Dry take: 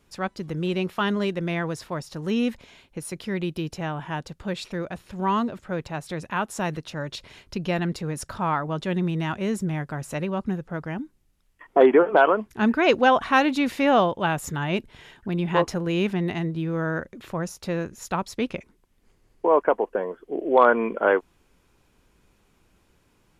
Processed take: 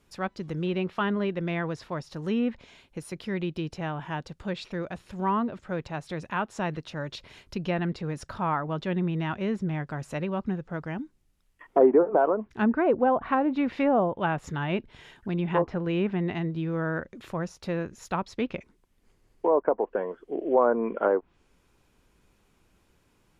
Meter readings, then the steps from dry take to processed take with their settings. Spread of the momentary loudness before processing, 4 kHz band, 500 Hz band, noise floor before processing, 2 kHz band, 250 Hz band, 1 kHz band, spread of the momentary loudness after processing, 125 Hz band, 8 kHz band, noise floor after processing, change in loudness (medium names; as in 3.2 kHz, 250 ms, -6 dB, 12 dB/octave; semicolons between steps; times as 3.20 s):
14 LU, -8.5 dB, -3.0 dB, -64 dBFS, -7.5 dB, -2.5 dB, -5.0 dB, 12 LU, -2.5 dB, under -10 dB, -67 dBFS, -3.5 dB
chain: dynamic bell 8.3 kHz, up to -6 dB, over -50 dBFS, Q 0.89; low-pass that closes with the level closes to 790 Hz, closed at -15.5 dBFS; trim -2.5 dB